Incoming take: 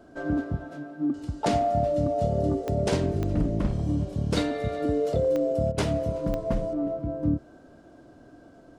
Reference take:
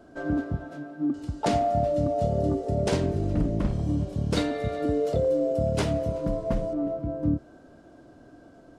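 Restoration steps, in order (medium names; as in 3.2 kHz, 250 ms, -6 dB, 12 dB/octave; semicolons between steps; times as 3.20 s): de-click; interpolate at 5.72 s, 57 ms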